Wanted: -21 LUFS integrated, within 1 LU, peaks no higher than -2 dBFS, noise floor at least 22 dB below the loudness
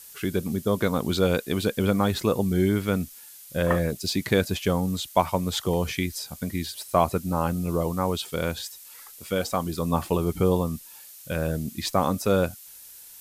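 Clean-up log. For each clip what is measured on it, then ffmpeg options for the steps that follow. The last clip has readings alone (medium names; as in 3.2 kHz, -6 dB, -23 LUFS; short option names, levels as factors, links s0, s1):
noise floor -46 dBFS; noise floor target -48 dBFS; loudness -26.0 LUFS; peak level -5.0 dBFS; loudness target -21.0 LUFS
-> -af "afftdn=nr=6:nf=-46"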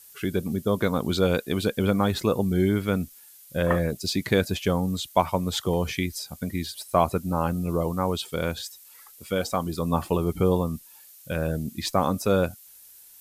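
noise floor -50 dBFS; loudness -26.0 LUFS; peak level -5.0 dBFS; loudness target -21.0 LUFS
-> -af "volume=1.78,alimiter=limit=0.794:level=0:latency=1"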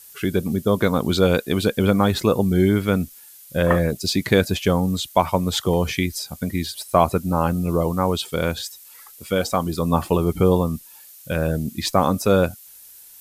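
loudness -21.0 LUFS; peak level -2.0 dBFS; noise floor -45 dBFS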